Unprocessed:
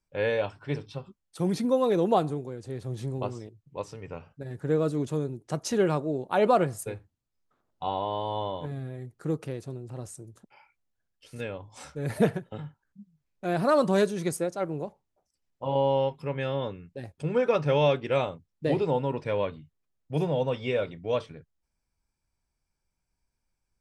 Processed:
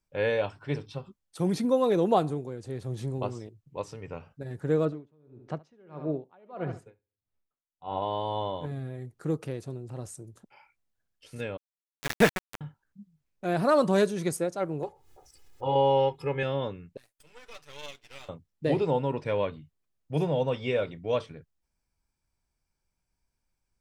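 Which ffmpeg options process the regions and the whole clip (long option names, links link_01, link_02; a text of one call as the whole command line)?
ffmpeg -i in.wav -filter_complex "[0:a]asettb=1/sr,asplit=3[link_01][link_02][link_03];[link_01]atrim=end=4.854[link_04];[link_02]atrim=start=4.85:end=8.02,asetpts=PTS-STARTPTS,afade=type=in:duration=0.004:curve=qsin,afade=type=out:start_time=3.166:duration=0.004:curve=qsin,lowpass=2700,aecho=1:1:72|144|216:0.224|0.0627|0.0176,atrim=end_sample=139797,aeval=exprs='val(0)*pow(10,-35*(0.5-0.5*cos(2*PI*1.6*n/s))/20)':channel_layout=same[link_05];[link_03]atrim=start=8.016[link_06];[link_04][link_05]acrossfade=duration=0.004:curve1=hsin:curve2=qsin[link_07];[link_07][link_06]acrossfade=duration=0.004:curve1=qsin:curve2=hsin,asettb=1/sr,asplit=3[link_08][link_09][link_10];[link_08]atrim=end=11.574[link_11];[link_09]atrim=start=11.57:end=12.61,asetpts=PTS-STARTPTS,afade=type=in:duration=0.004:curve=qsin,afade=type=out:start_time=1.036:duration=0.004:curve=qsin,equalizer=frequency=2100:width=0.63:gain=13,aeval=exprs='val(0)*gte(abs(val(0)),0.0708)':channel_layout=same[link_12];[link_10]atrim=start=12.606[link_13];[link_11][link_12]acrossfade=duration=0.004:curve1=hsin:curve2=qsin[link_14];[link_14][link_13]acrossfade=duration=0.004:curve1=qsin:curve2=hsin,asettb=1/sr,asplit=3[link_15][link_16][link_17];[link_15]atrim=end=14.834[link_18];[link_16]atrim=start=14.83:end=16.43,asetpts=PTS-STARTPTS,afade=type=in:duration=0.004:curve=qsin,afade=type=out:start_time=1.596:duration=0.004:curve=qsin,acompressor=mode=upward:threshold=-41dB:ratio=2.5:attack=3.2:release=140:knee=2.83:detection=peak,aecho=1:1:2.4:0.86,atrim=end_sample=70560[link_19];[link_17]atrim=start=16.426[link_20];[link_18][link_19]acrossfade=duration=0.004:curve1=hsin:curve2=qsin[link_21];[link_21][link_20]acrossfade=duration=0.004:curve1=qsin:curve2=hsin,asettb=1/sr,asplit=3[link_22][link_23][link_24];[link_22]atrim=end=16.974[link_25];[link_23]atrim=start=16.97:end=18.29,asetpts=PTS-STARTPTS,afade=type=in:duration=0.004:curve=qsin,afade=type=out:start_time=1.316:duration=0.004:curve=qsin,aderivative,aecho=1:1:6.8:0.51,atrim=end_sample=58212,aeval=exprs='max(val(0),0)':channel_layout=same[link_26];[link_24]atrim=start=18.286[link_27];[link_25][link_26]acrossfade=duration=0.004:curve1=hsin:curve2=qsin[link_28];[link_28][link_27]acrossfade=duration=0.004:curve1=qsin:curve2=hsin" out.wav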